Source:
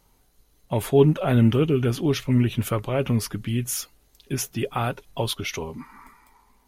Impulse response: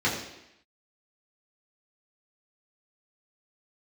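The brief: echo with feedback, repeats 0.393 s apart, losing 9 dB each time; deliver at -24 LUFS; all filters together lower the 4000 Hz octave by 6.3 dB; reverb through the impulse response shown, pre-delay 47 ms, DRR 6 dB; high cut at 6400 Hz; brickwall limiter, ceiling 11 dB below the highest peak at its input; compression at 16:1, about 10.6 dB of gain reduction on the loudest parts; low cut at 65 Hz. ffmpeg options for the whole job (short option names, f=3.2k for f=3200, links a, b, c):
-filter_complex "[0:a]highpass=65,lowpass=6.4k,equalizer=f=4k:t=o:g=-8,acompressor=threshold=-22dB:ratio=16,alimiter=limit=-23.5dB:level=0:latency=1,aecho=1:1:393|786|1179|1572:0.355|0.124|0.0435|0.0152,asplit=2[a][b];[1:a]atrim=start_sample=2205,adelay=47[c];[b][c]afir=irnorm=-1:irlink=0,volume=-19dB[d];[a][d]amix=inputs=2:normalize=0,volume=8dB"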